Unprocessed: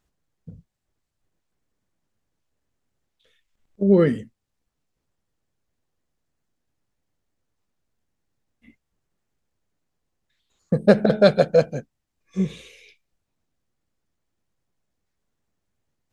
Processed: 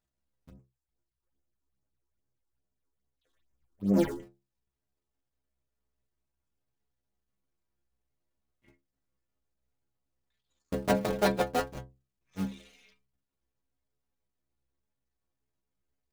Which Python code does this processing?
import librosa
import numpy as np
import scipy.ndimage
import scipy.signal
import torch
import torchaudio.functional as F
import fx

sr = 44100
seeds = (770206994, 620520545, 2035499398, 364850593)

y = fx.cycle_switch(x, sr, every=2, mode='muted')
y = fx.stiff_resonator(y, sr, f0_hz=63.0, decay_s=0.36, stiffness=0.008)
y = fx.phaser_stages(y, sr, stages=6, low_hz=150.0, high_hz=4100.0, hz=2.4, feedback_pct=25, at=(0.5, 4.2))